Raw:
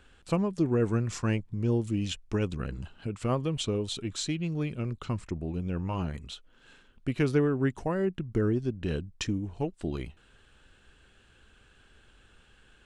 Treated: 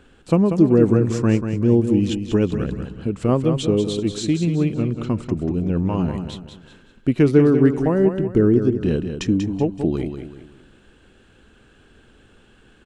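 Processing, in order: bell 280 Hz +10 dB 2.5 oct; feedback echo 0.189 s, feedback 37%, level -8 dB; gain +3 dB

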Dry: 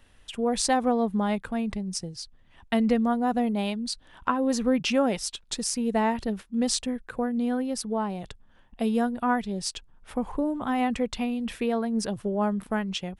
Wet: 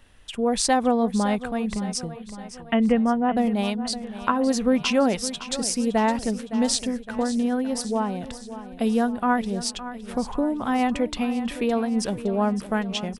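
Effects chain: 2.11–3.37 steep low-pass 3300 Hz 96 dB/oct; feedback echo 0.563 s, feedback 55%, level -13.5 dB; gain +3 dB

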